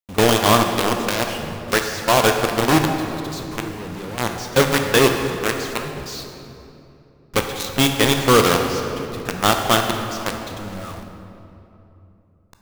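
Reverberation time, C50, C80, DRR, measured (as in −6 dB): 2.9 s, 4.5 dB, 6.0 dB, 3.5 dB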